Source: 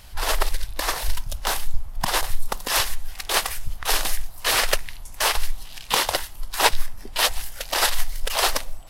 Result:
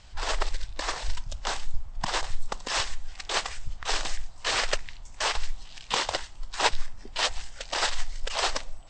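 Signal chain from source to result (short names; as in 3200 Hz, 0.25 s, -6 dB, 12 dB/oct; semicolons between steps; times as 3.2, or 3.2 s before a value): steep low-pass 8200 Hz 96 dB/oct; gain -5.5 dB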